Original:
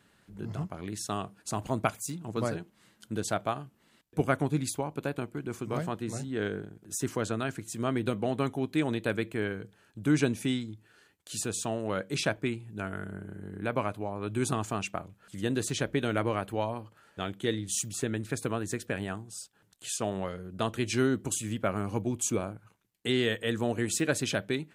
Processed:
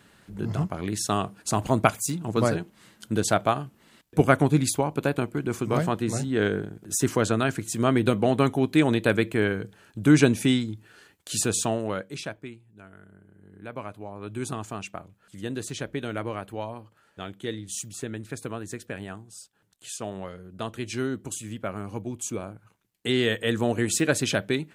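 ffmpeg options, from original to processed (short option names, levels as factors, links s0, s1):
-af "volume=20,afade=t=out:st=11.58:d=0.52:silence=0.251189,afade=t=out:st=12.1:d=0.55:silence=0.354813,afade=t=in:st=13.33:d=0.92:silence=0.298538,afade=t=in:st=22.35:d=1.09:silence=0.421697"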